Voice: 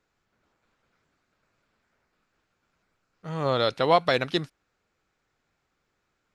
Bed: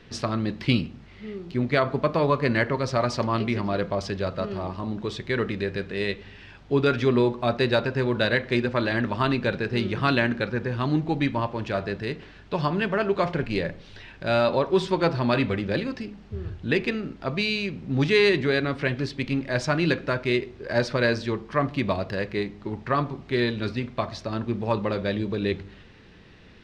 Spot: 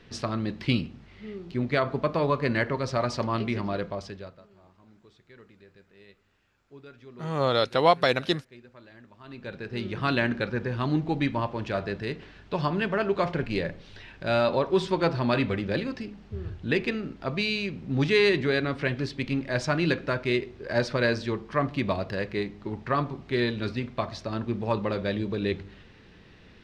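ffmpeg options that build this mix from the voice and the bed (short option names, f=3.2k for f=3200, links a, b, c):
-filter_complex "[0:a]adelay=3950,volume=0.5dB[a];[1:a]volume=21.5dB,afade=t=out:st=3.66:d=0.76:silence=0.0668344,afade=t=in:st=9.23:d=1.06:silence=0.0595662[b];[a][b]amix=inputs=2:normalize=0"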